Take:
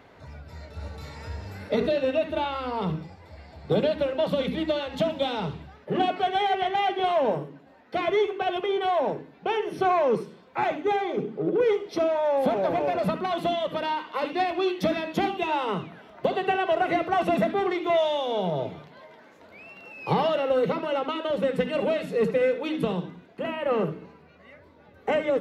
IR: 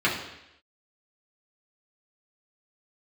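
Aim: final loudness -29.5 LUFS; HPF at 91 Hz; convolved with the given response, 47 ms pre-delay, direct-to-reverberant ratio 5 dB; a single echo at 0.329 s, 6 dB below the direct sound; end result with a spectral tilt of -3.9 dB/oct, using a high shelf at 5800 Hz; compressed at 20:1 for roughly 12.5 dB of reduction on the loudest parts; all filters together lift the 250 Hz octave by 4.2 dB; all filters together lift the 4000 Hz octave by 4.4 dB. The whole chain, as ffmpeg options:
-filter_complex "[0:a]highpass=91,equalizer=f=250:t=o:g=6,equalizer=f=4k:t=o:g=8,highshelf=f=5.8k:g=-7,acompressor=threshold=-29dB:ratio=20,aecho=1:1:329:0.501,asplit=2[a][b];[1:a]atrim=start_sample=2205,adelay=47[c];[b][c]afir=irnorm=-1:irlink=0,volume=-20.5dB[d];[a][d]amix=inputs=2:normalize=0,volume=3dB"

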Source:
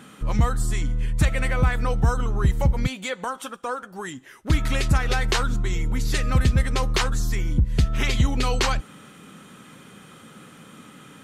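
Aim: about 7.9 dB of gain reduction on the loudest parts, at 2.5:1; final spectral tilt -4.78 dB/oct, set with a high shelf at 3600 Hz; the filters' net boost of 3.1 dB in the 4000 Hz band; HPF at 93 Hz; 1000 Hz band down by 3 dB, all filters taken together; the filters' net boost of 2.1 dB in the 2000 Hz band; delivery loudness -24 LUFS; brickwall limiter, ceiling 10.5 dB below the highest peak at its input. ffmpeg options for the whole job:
-af "highpass=93,equalizer=f=1k:t=o:g=-5,equalizer=f=2k:t=o:g=4,highshelf=f=3.6k:g=-6.5,equalizer=f=4k:t=o:g=7,acompressor=threshold=-30dB:ratio=2.5,volume=10.5dB,alimiter=limit=-13dB:level=0:latency=1"

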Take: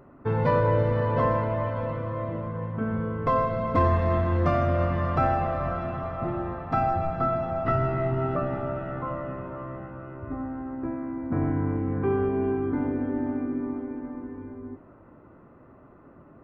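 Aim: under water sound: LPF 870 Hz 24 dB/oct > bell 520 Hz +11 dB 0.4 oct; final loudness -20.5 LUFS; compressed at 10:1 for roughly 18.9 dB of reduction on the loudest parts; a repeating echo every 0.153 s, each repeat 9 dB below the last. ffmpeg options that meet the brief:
-af "acompressor=threshold=-38dB:ratio=10,lowpass=f=870:w=0.5412,lowpass=f=870:w=1.3066,equalizer=f=520:t=o:w=0.4:g=11,aecho=1:1:153|306|459|612:0.355|0.124|0.0435|0.0152,volume=17.5dB"

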